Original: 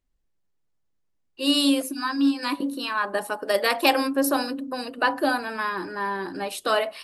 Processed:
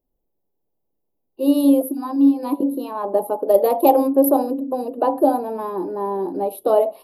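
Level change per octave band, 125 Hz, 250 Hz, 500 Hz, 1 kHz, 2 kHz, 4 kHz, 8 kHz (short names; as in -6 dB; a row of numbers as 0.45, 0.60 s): n/a, +7.0 dB, +9.0 dB, +4.0 dB, under -15 dB, under -15 dB, -2.0 dB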